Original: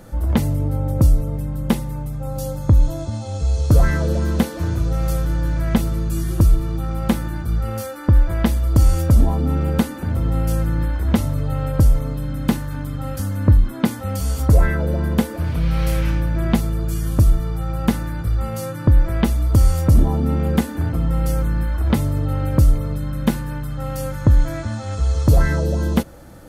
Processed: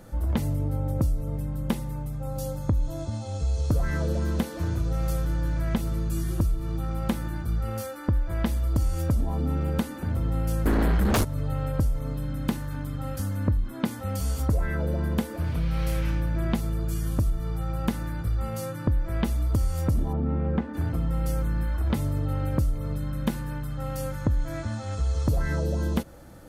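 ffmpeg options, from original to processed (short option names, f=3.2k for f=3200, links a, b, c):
-filter_complex "[0:a]asplit=3[a][b][c];[a]afade=t=out:st=10.65:d=0.02[d];[b]aeval=exprs='0.596*sin(PI/2*6.31*val(0)/0.596)':c=same,afade=t=in:st=10.65:d=0.02,afade=t=out:st=11.23:d=0.02[e];[c]afade=t=in:st=11.23:d=0.02[f];[d][e][f]amix=inputs=3:normalize=0,asplit=3[g][h][i];[g]afade=t=out:st=20.12:d=0.02[j];[h]lowpass=1.8k,afade=t=in:st=20.12:d=0.02,afade=t=out:st=20.73:d=0.02[k];[i]afade=t=in:st=20.73:d=0.02[l];[j][k][l]amix=inputs=3:normalize=0,acompressor=threshold=-15dB:ratio=6,volume=-5.5dB"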